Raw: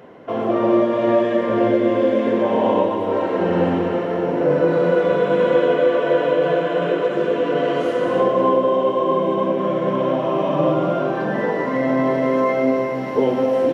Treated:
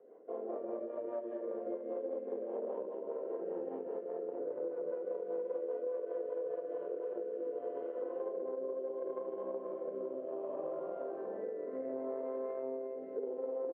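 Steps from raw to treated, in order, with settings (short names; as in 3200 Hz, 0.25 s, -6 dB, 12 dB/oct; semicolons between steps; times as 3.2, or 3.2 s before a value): on a send: early reflections 50 ms -5 dB, 76 ms -9 dB; on the sum: added harmonics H 2 -11 dB, 7 -29 dB, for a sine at -2 dBFS; rotary speaker horn 5 Hz, later 0.7 Hz, at 6.51; ladder band-pass 490 Hz, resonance 55%; compressor 4:1, threshold -34 dBFS, peak gain reduction 14.5 dB; gain -3.5 dB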